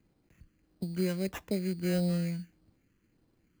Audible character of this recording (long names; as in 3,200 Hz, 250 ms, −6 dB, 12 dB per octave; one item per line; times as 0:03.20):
phaser sweep stages 4, 1.6 Hz, lowest notch 730–1,600 Hz
aliases and images of a low sample rate 4,500 Hz, jitter 0%